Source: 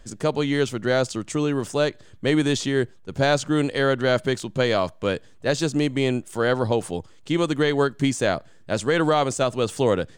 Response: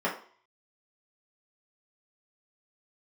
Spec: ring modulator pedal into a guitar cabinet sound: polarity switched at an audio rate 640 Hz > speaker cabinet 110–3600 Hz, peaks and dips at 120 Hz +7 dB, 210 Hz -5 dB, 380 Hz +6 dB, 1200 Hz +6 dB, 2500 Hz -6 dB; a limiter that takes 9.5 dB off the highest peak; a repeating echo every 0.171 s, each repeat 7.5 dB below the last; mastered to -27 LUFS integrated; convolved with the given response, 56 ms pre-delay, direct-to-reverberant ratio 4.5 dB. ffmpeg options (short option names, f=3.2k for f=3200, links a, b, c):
-filter_complex "[0:a]alimiter=limit=-19dB:level=0:latency=1,aecho=1:1:171|342|513|684|855:0.422|0.177|0.0744|0.0312|0.0131,asplit=2[a][b];[1:a]atrim=start_sample=2205,adelay=56[c];[b][c]afir=irnorm=-1:irlink=0,volume=-15.5dB[d];[a][d]amix=inputs=2:normalize=0,aeval=exprs='val(0)*sgn(sin(2*PI*640*n/s))':c=same,highpass=110,equalizer=f=120:t=q:w=4:g=7,equalizer=f=210:t=q:w=4:g=-5,equalizer=f=380:t=q:w=4:g=6,equalizer=f=1.2k:t=q:w=4:g=6,equalizer=f=2.5k:t=q:w=4:g=-6,lowpass=f=3.6k:w=0.5412,lowpass=f=3.6k:w=1.3066,volume=-1.5dB"